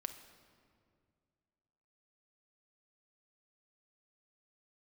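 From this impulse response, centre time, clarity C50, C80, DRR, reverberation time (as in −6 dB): 18 ms, 10.0 dB, 11.5 dB, 7.0 dB, 2.2 s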